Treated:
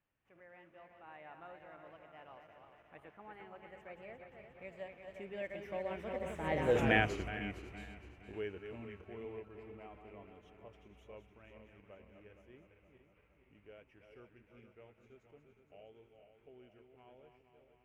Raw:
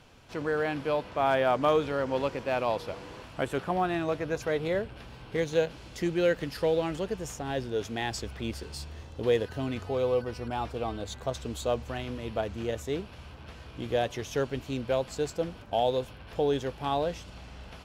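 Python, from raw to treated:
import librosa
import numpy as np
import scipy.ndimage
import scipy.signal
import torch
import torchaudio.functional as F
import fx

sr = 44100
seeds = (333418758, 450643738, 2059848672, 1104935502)

y = fx.reverse_delay_fb(x, sr, ms=205, feedback_pct=71, wet_db=-6.5)
y = fx.doppler_pass(y, sr, speed_mps=47, closest_m=6.6, pass_at_s=6.84)
y = fx.high_shelf_res(y, sr, hz=3200.0, db=-10.0, q=3.0)
y = y * 10.0 ** (3.0 / 20.0)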